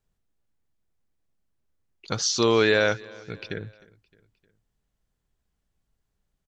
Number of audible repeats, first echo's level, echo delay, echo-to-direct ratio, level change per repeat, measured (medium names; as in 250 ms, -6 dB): 3, -23.5 dB, 308 ms, -22.0 dB, -5.5 dB